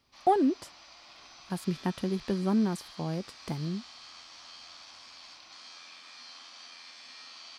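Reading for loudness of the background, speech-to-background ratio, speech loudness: -47.5 LUFS, 16.5 dB, -31.0 LUFS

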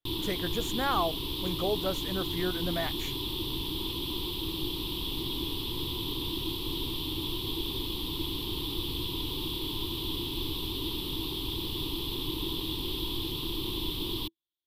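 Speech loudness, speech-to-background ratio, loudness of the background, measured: -33.5 LUFS, -0.5 dB, -33.0 LUFS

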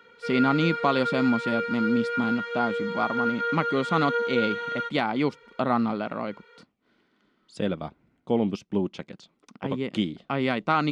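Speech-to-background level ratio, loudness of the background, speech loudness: 1.5 dB, -29.0 LUFS, -27.5 LUFS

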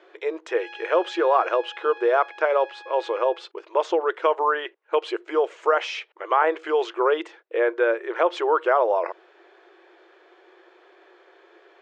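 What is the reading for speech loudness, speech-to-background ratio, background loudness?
-23.5 LUFS, 19.0 dB, -42.5 LUFS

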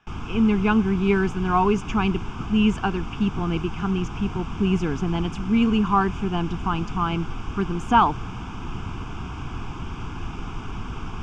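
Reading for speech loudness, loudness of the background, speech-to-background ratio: -23.5 LUFS, -34.5 LUFS, 11.0 dB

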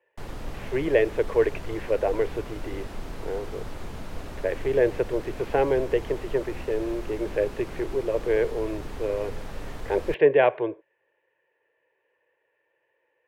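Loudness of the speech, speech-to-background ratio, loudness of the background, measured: -26.5 LUFS, 13.5 dB, -40.0 LUFS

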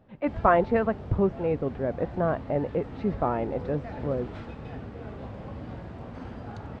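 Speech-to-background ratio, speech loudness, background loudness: 12.5 dB, -27.5 LUFS, -40.0 LUFS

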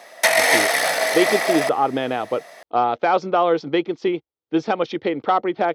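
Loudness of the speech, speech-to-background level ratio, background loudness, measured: -22.0 LUFS, -4.0 dB, -18.0 LUFS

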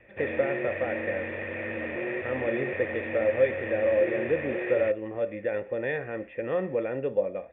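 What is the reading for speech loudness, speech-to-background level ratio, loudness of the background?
-29.5 LUFS, 3.5 dB, -33.0 LUFS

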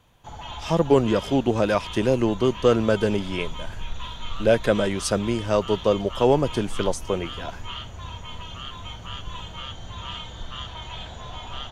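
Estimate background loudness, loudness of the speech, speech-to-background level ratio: -36.5 LUFS, -23.0 LUFS, 13.5 dB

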